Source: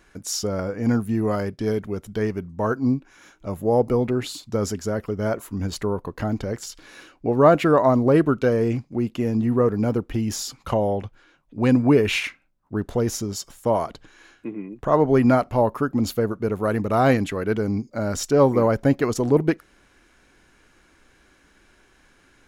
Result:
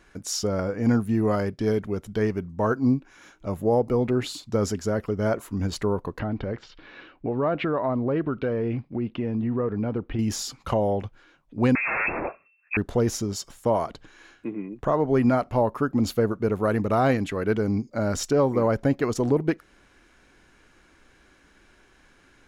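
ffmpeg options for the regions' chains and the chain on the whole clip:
-filter_complex "[0:a]asettb=1/sr,asplit=3[a][b][c];[a]atrim=end=6.194[d];[b]atrim=start=6.19:end=10.19,asetpts=PTS-STARTPTS,afade=t=in:d=0.004:c=qsin,afade=t=out:st=3.996:d=0.004:c=qsin,lowpass=f=3.6k:w=0.5412,lowpass=f=3.6k:w=1.3066,acompressor=threshold=-25dB:ratio=2.5:attack=3.2:release=140:knee=1:detection=peak[e];[c]atrim=start=10.186[f];[d][e]acrossfade=d=0.004:c1=hsin:c2=qsin[g];[g][f]acrossfade=d=0.004:c1=qsin:c2=hsin,asettb=1/sr,asplit=3[h][i][j];[h]atrim=end=11.754[k];[i]atrim=start=11.75:end=12.77,asetpts=PTS-STARTPTS,afade=t=in:d=0.004:c=qsin,afade=t=out:st=1.016:d=0.004:c=qsin,acontrast=25,aeval=exprs='0.112*(abs(mod(val(0)/0.112+3,4)-2)-1)':c=same,lowpass=f=2.3k:t=q:w=0.5098,lowpass=f=2.3k:t=q:w=0.6013,lowpass=f=2.3k:t=q:w=0.9,lowpass=f=2.3k:t=q:w=2.563,afreqshift=-2700[l];[j]atrim=start=12.766[m];[k][l]acrossfade=d=0.004:c1=hsin:c2=qsin[n];[n][m]acrossfade=d=0.004:c1=qsin:c2=hsin,highshelf=f=10k:g=-7.5,alimiter=limit=-12dB:level=0:latency=1:release=377"

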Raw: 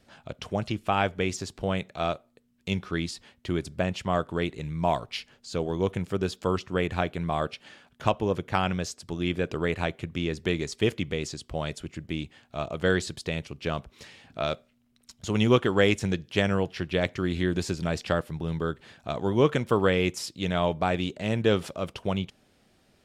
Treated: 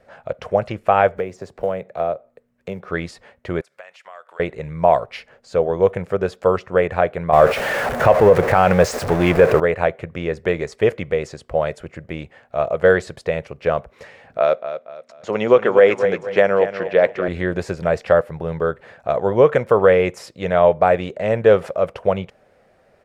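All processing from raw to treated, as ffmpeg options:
-filter_complex "[0:a]asettb=1/sr,asplit=3[a][b][c];[a]atrim=end=1.174[d];[b]atrim=start=1.17:end=2.88,asetpts=PTS-STARTPTS,afade=t=in:d=0.004:c=qsin,afade=t=out:st=1.706:d=0.004:c=qsin,acrusher=bits=7:mode=log:mix=0:aa=0.000001,acrossover=split=130|810[e][f][g];[e]acompressor=threshold=-48dB:ratio=4[h];[f]acompressor=threshold=-31dB:ratio=4[i];[g]acompressor=threshold=-44dB:ratio=4[j];[h][i][j]amix=inputs=3:normalize=0[k];[c]atrim=start=2.876[l];[d][k]acrossfade=d=0.004:c1=hsin:c2=qsin[m];[m][l]acrossfade=d=0.004:c1=qsin:c2=hsin,asettb=1/sr,asplit=3[n][o][p];[n]atrim=end=3.614[q];[o]atrim=start=3.61:end=4.4,asetpts=PTS-STARTPTS,afade=t=in:d=0.004:c=qsin,afade=t=out:st=0.786:d=0.004:c=qsin,highpass=1.2k,acompressor=threshold=-51dB:ratio=3:attack=3.2:release=140:knee=1:detection=peak,adynamicequalizer=threshold=0.001:dfrequency=1900:dqfactor=0.7:tfrequency=1900:tqfactor=0.7:attack=5:release=100:ratio=0.375:range=2:mode=boostabove:tftype=highshelf[r];[p]atrim=start=4.396[s];[q][r]acrossfade=d=0.004:c1=hsin:c2=qsin[t];[t][s]acrossfade=d=0.004:c1=qsin:c2=hsin,asettb=1/sr,asplit=3[u][v][w];[u]atrim=end=7.334[x];[v]atrim=start=7.33:end=9.6,asetpts=PTS-STARTPTS,afade=t=in:d=0.004:c=qsin,afade=t=out:st=2.266:d=0.004:c=qsin,aeval=exprs='val(0)+0.5*0.0282*sgn(val(0))':c=same,acontrast=85[y];[w]atrim=start=9.596[z];[x][y]acrossfade=d=0.004:c1=hsin:c2=qsin[aa];[aa][z]acrossfade=d=0.004:c1=qsin:c2=hsin,asettb=1/sr,asplit=3[ab][ac][ad];[ab]atrim=end=14.384[ae];[ac]atrim=start=14.38:end=17.28,asetpts=PTS-STARTPTS,afade=t=in:d=0.004:c=qsin,afade=t=out:st=2.896:d=0.004:c=qsin,highpass=210,lowpass=6.6k,aecho=1:1:237|474|711|948:0.282|0.0986|0.0345|0.0121,atrim=end_sample=127890[af];[ad]atrim=start=17.276[ag];[ae][af]acrossfade=d=0.004:c1=hsin:c2=qsin[ah];[ah][ag]acrossfade=d=0.004:c1=qsin:c2=hsin,firequalizer=gain_entry='entry(170,0);entry(290,-4);entry(510,14);entry(900,6);entry(1900,6);entry(3200,-7)':delay=0.05:min_phase=1,alimiter=level_in=3.5dB:limit=-1dB:release=50:level=0:latency=1,volume=-1dB"

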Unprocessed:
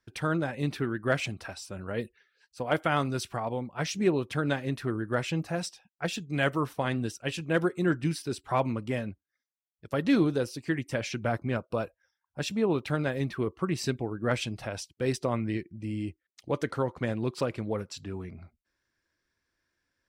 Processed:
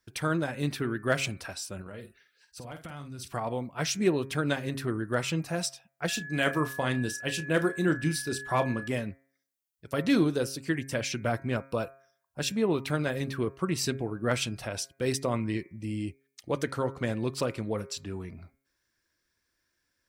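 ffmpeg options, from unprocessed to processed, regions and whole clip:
-filter_complex "[0:a]asettb=1/sr,asplit=3[a][b][c];[a]atrim=end=1.814[d];[b]atrim=start=1.81:end=3.28,asetpts=PTS-STARTPTS,afade=t=in:d=0.004:c=qsin,afade=t=out:st=1.466:d=0.004:c=qsin,asubboost=boost=6.5:cutoff=240,acompressor=threshold=-40dB:ratio=5:attack=3.2:release=140:knee=1:detection=peak,asplit=2[e][f];[f]adelay=49,volume=-8.5dB[g];[e][g]amix=inputs=2:normalize=0,atrim=end_sample=64827[h];[c]atrim=start=3.276[i];[d][h]acrossfade=d=0.004:c1=hsin:c2=qsin[j];[j][i]acrossfade=d=0.004:c1=qsin:c2=hsin,asettb=1/sr,asplit=3[k][l][m];[k]atrim=end=6.094[n];[l]atrim=start=6.09:end=8.88,asetpts=PTS-STARTPTS,afade=t=in:d=0.004:c=qsin,afade=t=out:st=2.786:d=0.004:c=qsin,aeval=exprs='val(0)+0.0126*sin(2*PI*1700*n/s)':c=same,asplit=2[o][p];[p]adelay=32,volume=-12dB[q];[o][q]amix=inputs=2:normalize=0,atrim=end_sample=123039[r];[m]atrim=start=8.876[s];[n][r]acrossfade=d=0.004:c1=hsin:c2=qsin[t];[t][s]acrossfade=d=0.004:c1=qsin:c2=hsin,highshelf=f=5.5k:g=10,bandreject=f=810:w=26,bandreject=f=135.5:t=h:w=4,bandreject=f=271:t=h:w=4,bandreject=f=406.5:t=h:w=4,bandreject=f=542:t=h:w=4,bandreject=f=677.5:t=h:w=4,bandreject=f=813:t=h:w=4,bandreject=f=948.5:t=h:w=4,bandreject=f=1.084k:t=h:w=4,bandreject=f=1.2195k:t=h:w=4,bandreject=f=1.355k:t=h:w=4,bandreject=f=1.4905k:t=h:w=4,bandreject=f=1.626k:t=h:w=4,bandreject=f=1.7615k:t=h:w=4,bandreject=f=1.897k:t=h:w=4,bandreject=f=2.0325k:t=h:w=4,bandreject=f=2.168k:t=h:w=4,bandreject=f=2.3035k:t=h:w=4,bandreject=f=2.439k:t=h:w=4"

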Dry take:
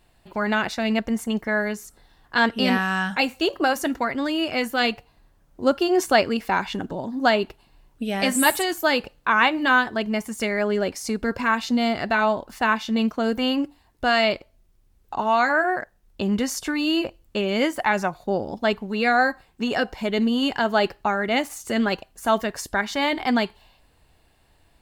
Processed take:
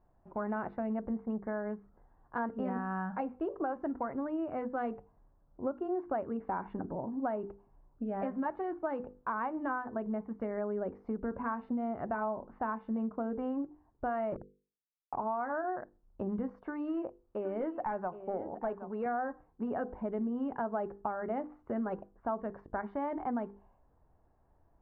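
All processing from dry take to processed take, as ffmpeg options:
-filter_complex "[0:a]asettb=1/sr,asplit=3[a][b][c];[a]atrim=end=14.324[d];[b]atrim=start=14.32:end=15.16,asetpts=PTS-STARTPTS,afade=t=in:d=0.004:c=qsin,afade=t=out:st=0.836:d=0.004:c=qsin,lowshelf=f=410:g=11,acrusher=bits=4:mix=0:aa=0.5[e];[c]atrim=start=15.156[f];[d][e]acrossfade=d=0.004:c1=hsin:c2=qsin[g];[g][f]acrossfade=d=0.004:c1=qsin:c2=hsin,asettb=1/sr,asplit=3[h][i][j];[h]atrim=end=16.584[k];[i]atrim=start=16.58:end=19.06,asetpts=PTS-STARTPTS,afade=t=in:d=0.004:c=qsin,afade=t=out:st=2.476:d=0.004:c=qsin,bass=f=250:g=-9,treble=f=4k:g=2,volume=17.5dB,asoftclip=hard,volume=-17.5dB,aecho=1:1:769:0.224,atrim=end_sample=109368[l];[j]atrim=start=19.056[m];[k][l]acrossfade=d=0.004:c1=hsin:c2=qsin[n];[n][m]acrossfade=d=0.004:c1=qsin:c2=hsin,lowpass=f=1.2k:w=0.5412,lowpass=f=1.2k:w=1.3066,bandreject=f=50:t=h:w=6,bandreject=f=100:t=h:w=6,bandreject=f=150:t=h:w=6,bandreject=f=200:t=h:w=6,bandreject=f=250:t=h:w=6,bandreject=f=300:t=h:w=6,bandreject=f=350:t=h:w=6,bandreject=f=400:t=h:w=6,bandreject=f=450:t=h:w=6,bandreject=f=500:t=h:w=6,acompressor=threshold=-24dB:ratio=6,volume=-7dB"

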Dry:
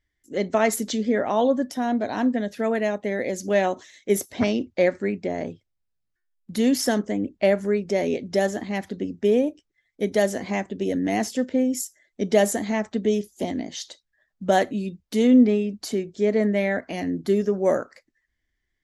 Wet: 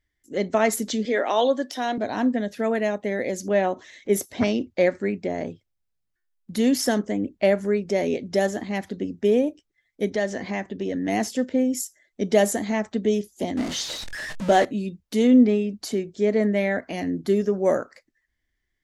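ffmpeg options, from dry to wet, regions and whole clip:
-filter_complex "[0:a]asettb=1/sr,asplit=3[a][b][c];[a]atrim=end=1.054[d];[b]atrim=start=1.05:end=1.98,asetpts=PTS-STARTPTS,afade=t=in:d=0.004:c=qsin,afade=t=out:st=0.926:d=0.004:c=qsin,deesser=0.8,highpass=f=290:w=0.5412,highpass=f=290:w=1.3066,equalizer=f=3.7k:w=0.72:g=9.5[e];[c]atrim=start=1.976[f];[d][e]acrossfade=d=0.004:c1=hsin:c2=qsin[g];[g][f]acrossfade=d=0.004:c1=qsin:c2=hsin,asettb=1/sr,asplit=3[h][i][j];[h]atrim=end=3.484[k];[i]atrim=start=3.48:end=4.13,asetpts=PTS-STARTPTS,afade=t=in:d=0.004:c=qsin,afade=t=out:st=0.646:d=0.004:c=qsin,lowpass=f=2.2k:p=1,acompressor=mode=upward:threshold=-36dB:ratio=2.5:attack=3.2:release=140:knee=2.83:detection=peak[l];[j]atrim=start=4.126[m];[k][l]acrossfade=d=0.004:c1=hsin:c2=qsin[n];[n][m]acrossfade=d=0.004:c1=qsin:c2=hsin,asettb=1/sr,asplit=3[o][p][q];[o]atrim=end=10.104[r];[p]atrim=start=10.1:end=11.08,asetpts=PTS-STARTPTS,afade=t=in:d=0.004:c=qsin,afade=t=out:st=0.976:d=0.004:c=qsin,lowpass=f=6.5k:w=0.5412,lowpass=f=6.5k:w=1.3066,acompressor=threshold=-27dB:ratio=1.5:attack=3.2:release=140:knee=1:detection=peak,equalizer=f=1.8k:w=6.2:g=5[s];[q]atrim=start=11.076[t];[r][s]acrossfade=d=0.004:c1=hsin:c2=qsin[u];[u][t]acrossfade=d=0.004:c1=qsin:c2=hsin,asettb=1/sr,asplit=3[v][w][x];[v]atrim=end=13.574[y];[w]atrim=start=13.57:end=14.65,asetpts=PTS-STARTPTS,afade=t=in:d=0.004:c=qsin,afade=t=out:st=1.076:d=0.004:c=qsin,aeval=exprs='val(0)+0.5*0.0422*sgn(val(0))':c=same,lowpass=8.5k,asplit=2[z][aa];[aa]adelay=24,volume=-10.5dB[ab];[z][ab]amix=inputs=2:normalize=0,atrim=end_sample=47628[ac];[x]atrim=start=14.646[ad];[y][ac]acrossfade=d=0.004:c1=hsin:c2=qsin[ae];[ae][ad]acrossfade=d=0.004:c1=qsin:c2=hsin"

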